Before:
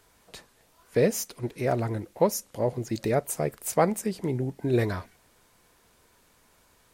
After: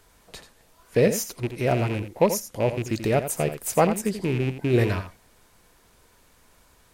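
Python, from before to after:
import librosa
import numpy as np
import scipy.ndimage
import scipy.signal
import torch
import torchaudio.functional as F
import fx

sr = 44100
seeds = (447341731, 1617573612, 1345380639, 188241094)

y = fx.rattle_buzz(x, sr, strikes_db=-31.0, level_db=-27.0)
y = fx.low_shelf(y, sr, hz=61.0, db=8.0)
y = y + 10.0 ** (-10.5 / 20.0) * np.pad(y, (int(85 * sr / 1000.0), 0))[:len(y)]
y = F.gain(torch.from_numpy(y), 2.5).numpy()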